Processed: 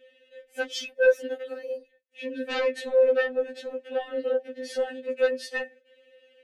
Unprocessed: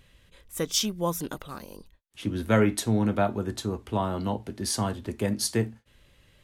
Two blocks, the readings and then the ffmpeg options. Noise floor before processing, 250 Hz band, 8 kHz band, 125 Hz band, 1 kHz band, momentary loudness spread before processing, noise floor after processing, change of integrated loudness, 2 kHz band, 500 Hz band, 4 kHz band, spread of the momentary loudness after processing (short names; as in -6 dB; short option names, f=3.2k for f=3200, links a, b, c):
-62 dBFS, -12.5 dB, under -10 dB, under -40 dB, -7.5 dB, 13 LU, -65 dBFS, +0.5 dB, +6.5 dB, +6.5 dB, -5.0 dB, 15 LU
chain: -filter_complex "[0:a]asplit=3[a][b][c];[a]bandpass=f=530:t=q:w=8,volume=0dB[d];[b]bandpass=f=1.84k:t=q:w=8,volume=-6dB[e];[c]bandpass=f=2.48k:t=q:w=8,volume=-9dB[f];[d][e][f]amix=inputs=3:normalize=0,aeval=exprs='0.106*sin(PI/2*3.98*val(0)/0.106)':c=same,afftfilt=real='re*3.46*eq(mod(b,12),0)':imag='im*3.46*eq(mod(b,12),0)':win_size=2048:overlap=0.75"